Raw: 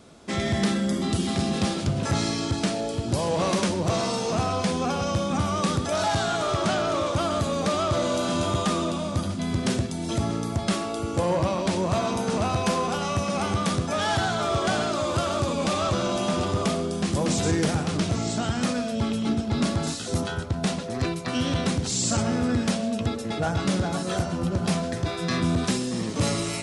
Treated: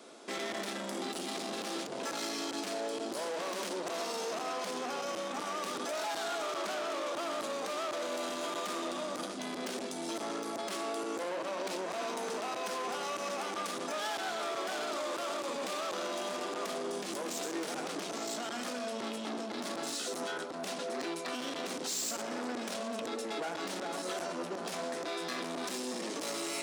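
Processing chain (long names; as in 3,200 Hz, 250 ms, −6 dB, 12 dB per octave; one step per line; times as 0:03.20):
soft clipping −29.5 dBFS, distortion −8 dB
high-pass filter 290 Hz 24 dB per octave
brickwall limiter −27.5 dBFS, peak gain reduction 5.5 dB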